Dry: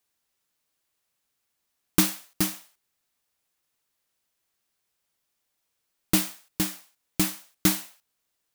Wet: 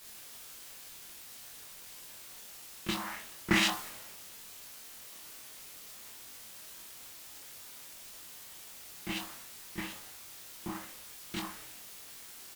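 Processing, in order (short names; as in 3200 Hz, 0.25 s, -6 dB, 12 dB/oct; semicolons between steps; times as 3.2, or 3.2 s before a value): Doppler pass-by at 1.84, 6 m/s, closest 4.4 m; bell 8000 Hz +10.5 dB 1.4 oct; reverse; compressor 5:1, threshold -35 dBFS, peak gain reduction 21 dB; reverse; chopper 0.87 Hz, depth 65%, duty 20%; granular stretch 1.6×, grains 0.134 s; LFO low-pass saw up 2.5 Hz 840–3200 Hz; in parallel at -9 dB: requantised 8-bit, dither triangular; on the sum: doubler 24 ms -5 dB; reverb, pre-delay 34 ms, DRR 10 dB; speed mistake 44.1 kHz file played as 48 kHz; three-band expander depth 70%; gain +7.5 dB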